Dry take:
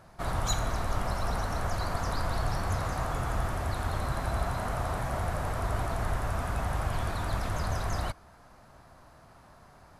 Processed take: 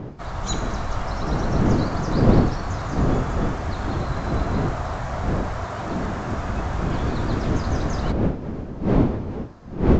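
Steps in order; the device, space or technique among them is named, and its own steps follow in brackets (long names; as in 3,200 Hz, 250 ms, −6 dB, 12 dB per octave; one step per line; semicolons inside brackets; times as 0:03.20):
0:05.64–0:06.37: high-pass filter 130 Hz
smartphone video outdoors (wind on the microphone 280 Hz −27 dBFS; automatic gain control gain up to 4 dB; AAC 48 kbit/s 16,000 Hz)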